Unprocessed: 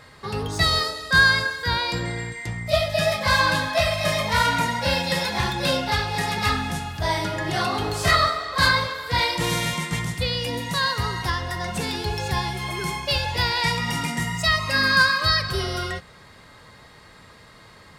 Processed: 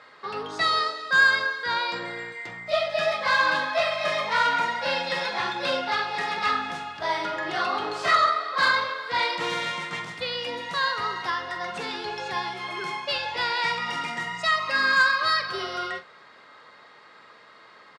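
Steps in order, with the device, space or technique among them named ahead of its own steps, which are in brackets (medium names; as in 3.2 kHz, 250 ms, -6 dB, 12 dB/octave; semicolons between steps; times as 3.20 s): intercom (band-pass 370–4100 Hz; peaking EQ 1.3 kHz +5 dB 0.39 oct; saturation -9 dBFS, distortion -21 dB; doubling 45 ms -12 dB); trim -2 dB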